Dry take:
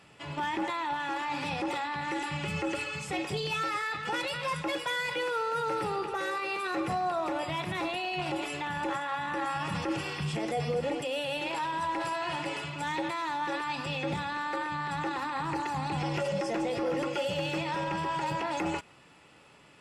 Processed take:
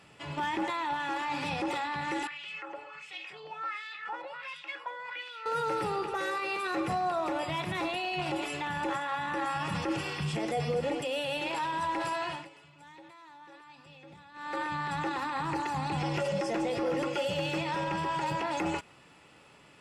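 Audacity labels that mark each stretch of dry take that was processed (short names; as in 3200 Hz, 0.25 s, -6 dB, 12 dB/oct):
2.270000	5.460000	LFO band-pass sine 1.4 Hz 720–3300 Hz
12.220000	14.600000	dip -19.5 dB, fades 0.27 s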